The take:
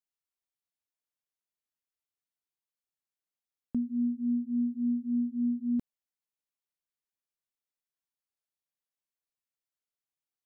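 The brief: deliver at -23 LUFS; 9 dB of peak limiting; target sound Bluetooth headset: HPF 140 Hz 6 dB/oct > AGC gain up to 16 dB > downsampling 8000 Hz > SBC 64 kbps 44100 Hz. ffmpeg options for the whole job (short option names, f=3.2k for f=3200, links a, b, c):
-af "alimiter=level_in=8.5dB:limit=-24dB:level=0:latency=1,volume=-8.5dB,highpass=f=140:p=1,dynaudnorm=m=16dB,aresample=8000,aresample=44100,volume=16dB" -ar 44100 -c:a sbc -b:a 64k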